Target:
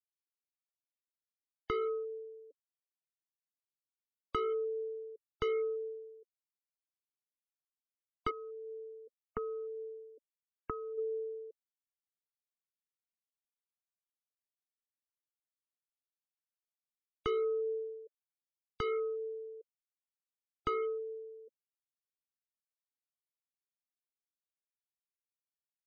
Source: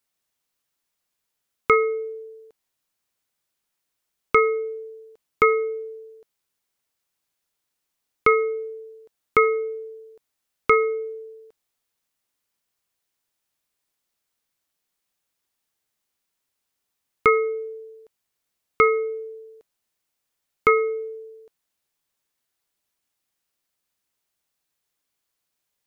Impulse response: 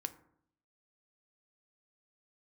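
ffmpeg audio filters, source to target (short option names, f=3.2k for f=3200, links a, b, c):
-filter_complex "[0:a]adynamicequalizer=threshold=0.0316:dfrequency=580:dqfactor=0.76:tfrequency=580:tqfactor=0.76:attack=5:release=100:ratio=0.375:range=2:mode=cutabove:tftype=bell,asplit=3[a][b][c];[a]afade=t=out:st=8.29:d=0.02[d];[b]acompressor=threshold=-34dB:ratio=5,afade=t=in:st=8.29:d=0.02,afade=t=out:st=10.97:d=0.02[e];[c]afade=t=in:st=10.97:d=0.02[f];[d][e][f]amix=inputs=3:normalize=0,asuperstop=centerf=3000:order=20:qfactor=0.91,volume=22.5dB,asoftclip=hard,volume=-22.5dB,flanger=delay=1.2:depth=3.1:regen=34:speed=0.16:shape=triangular,acrossover=split=320|1300[g][h][i];[g]acompressor=threshold=-49dB:ratio=4[j];[h]acompressor=threshold=-34dB:ratio=4[k];[i]acompressor=threshold=-42dB:ratio=4[l];[j][k][l]amix=inputs=3:normalize=0,bass=f=250:g=10,treble=f=4k:g=-10,afftfilt=real='re*gte(hypot(re,im),0.00355)':imag='im*gte(hypot(re,im),0.00355)':win_size=1024:overlap=0.75"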